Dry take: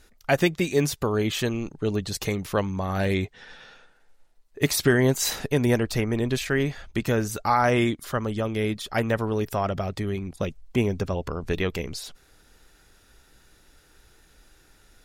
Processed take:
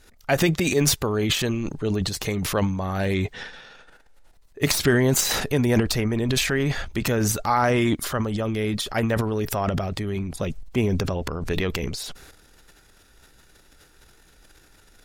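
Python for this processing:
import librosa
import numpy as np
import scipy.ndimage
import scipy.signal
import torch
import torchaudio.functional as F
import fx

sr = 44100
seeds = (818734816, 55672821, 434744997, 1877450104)

y = fx.tracing_dist(x, sr, depth_ms=0.024)
y = fx.transient(y, sr, attack_db=0, sustain_db=12)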